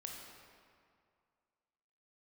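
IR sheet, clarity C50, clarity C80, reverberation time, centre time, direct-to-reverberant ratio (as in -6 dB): 1.5 dB, 3.0 dB, 2.2 s, 88 ms, 0.0 dB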